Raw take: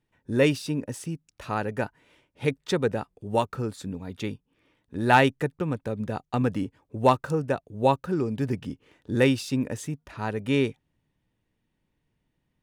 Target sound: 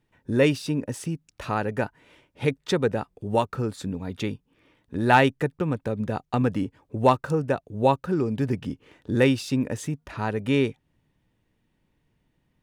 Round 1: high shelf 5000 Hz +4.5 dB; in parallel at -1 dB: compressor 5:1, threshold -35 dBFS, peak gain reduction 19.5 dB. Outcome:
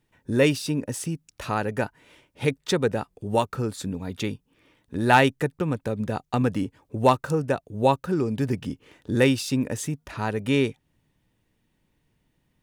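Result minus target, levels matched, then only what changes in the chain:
8000 Hz band +5.0 dB
change: high shelf 5000 Hz -3.5 dB

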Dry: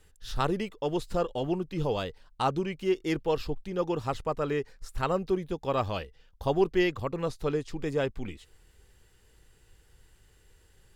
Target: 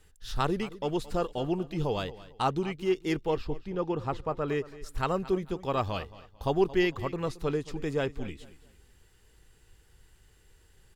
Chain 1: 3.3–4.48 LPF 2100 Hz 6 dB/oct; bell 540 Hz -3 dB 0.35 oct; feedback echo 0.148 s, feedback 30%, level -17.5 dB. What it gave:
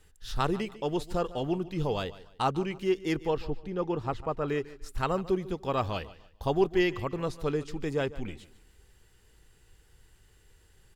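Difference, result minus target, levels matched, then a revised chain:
echo 75 ms early
3.3–4.48 LPF 2100 Hz 6 dB/oct; bell 540 Hz -3 dB 0.35 oct; feedback echo 0.223 s, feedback 30%, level -17.5 dB

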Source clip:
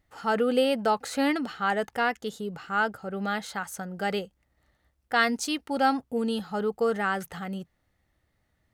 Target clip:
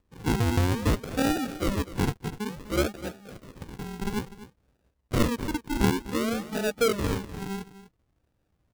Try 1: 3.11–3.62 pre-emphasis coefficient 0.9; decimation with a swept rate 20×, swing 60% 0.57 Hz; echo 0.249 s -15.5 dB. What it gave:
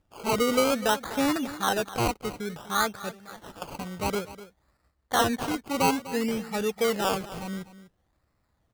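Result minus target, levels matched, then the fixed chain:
decimation with a swept rate: distortion -16 dB
3.11–3.62 pre-emphasis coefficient 0.9; decimation with a swept rate 58×, swing 60% 0.57 Hz; echo 0.249 s -15.5 dB

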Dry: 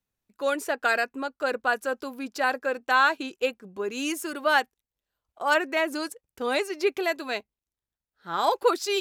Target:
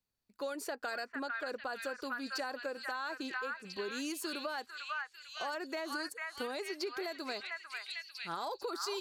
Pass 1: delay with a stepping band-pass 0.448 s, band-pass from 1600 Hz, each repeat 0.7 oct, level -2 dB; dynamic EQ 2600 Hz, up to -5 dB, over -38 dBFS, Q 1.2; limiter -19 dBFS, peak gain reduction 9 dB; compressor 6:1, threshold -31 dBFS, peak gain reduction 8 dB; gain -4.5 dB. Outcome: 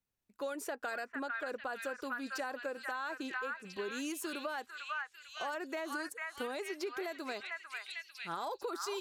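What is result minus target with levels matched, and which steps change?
4000 Hz band -4.0 dB
add after compressor: bell 4500 Hz +11.5 dB 0.21 oct

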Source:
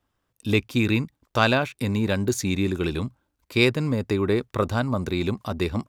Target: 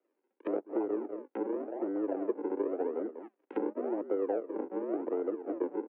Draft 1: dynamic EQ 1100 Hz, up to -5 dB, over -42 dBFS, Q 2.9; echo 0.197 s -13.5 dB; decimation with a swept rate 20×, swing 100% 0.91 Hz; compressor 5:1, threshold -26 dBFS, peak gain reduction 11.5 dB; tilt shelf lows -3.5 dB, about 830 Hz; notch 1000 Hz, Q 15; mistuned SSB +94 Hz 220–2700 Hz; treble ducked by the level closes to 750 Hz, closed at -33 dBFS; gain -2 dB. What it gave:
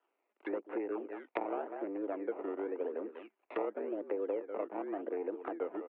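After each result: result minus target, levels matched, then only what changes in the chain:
decimation with a swept rate: distortion -8 dB; 1000 Hz band +4.0 dB
change: decimation with a swept rate 53×, swing 100% 0.91 Hz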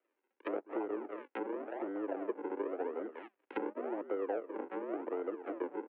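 1000 Hz band +4.5 dB
change: tilt shelf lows +3.5 dB, about 830 Hz

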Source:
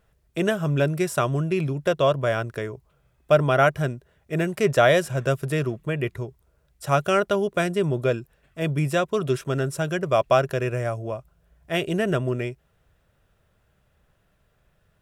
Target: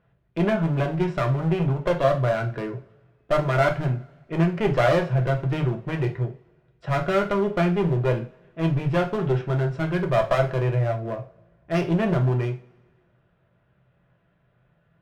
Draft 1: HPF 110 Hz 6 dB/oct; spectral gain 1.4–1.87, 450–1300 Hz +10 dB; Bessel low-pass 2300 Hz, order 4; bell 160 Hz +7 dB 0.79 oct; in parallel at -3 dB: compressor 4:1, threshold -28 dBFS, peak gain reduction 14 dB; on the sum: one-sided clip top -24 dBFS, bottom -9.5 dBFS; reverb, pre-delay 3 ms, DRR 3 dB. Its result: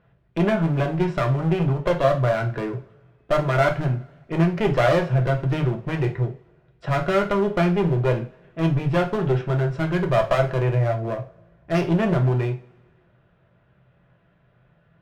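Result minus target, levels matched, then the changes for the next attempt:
compressor: peak gain reduction +14 dB
remove: compressor 4:1, threshold -28 dBFS, peak gain reduction 14 dB

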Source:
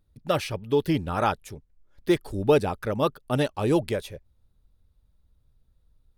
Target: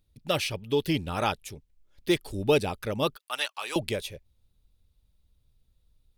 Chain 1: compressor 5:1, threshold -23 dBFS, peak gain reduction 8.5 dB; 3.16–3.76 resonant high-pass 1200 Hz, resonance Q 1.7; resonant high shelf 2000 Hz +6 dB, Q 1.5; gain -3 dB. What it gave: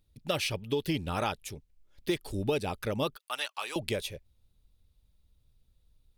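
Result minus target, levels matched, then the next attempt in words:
compressor: peak gain reduction +8.5 dB
3.16–3.76 resonant high-pass 1200 Hz, resonance Q 1.7; resonant high shelf 2000 Hz +6 dB, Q 1.5; gain -3 dB

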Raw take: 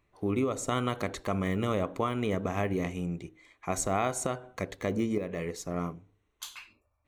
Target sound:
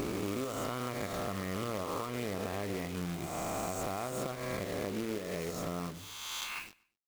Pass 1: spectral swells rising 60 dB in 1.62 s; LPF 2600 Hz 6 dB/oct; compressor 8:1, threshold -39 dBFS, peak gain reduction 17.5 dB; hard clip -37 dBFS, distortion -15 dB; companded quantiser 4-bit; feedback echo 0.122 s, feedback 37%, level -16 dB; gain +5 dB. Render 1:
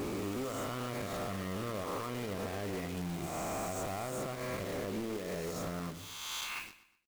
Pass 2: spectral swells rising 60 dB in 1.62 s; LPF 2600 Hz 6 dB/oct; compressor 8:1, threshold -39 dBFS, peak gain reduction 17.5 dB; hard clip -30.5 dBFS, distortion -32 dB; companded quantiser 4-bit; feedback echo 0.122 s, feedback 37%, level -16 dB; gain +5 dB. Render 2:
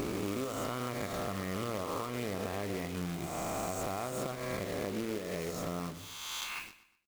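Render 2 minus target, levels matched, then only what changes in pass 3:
echo-to-direct +8.5 dB
change: feedback echo 0.122 s, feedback 37%, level -24.5 dB

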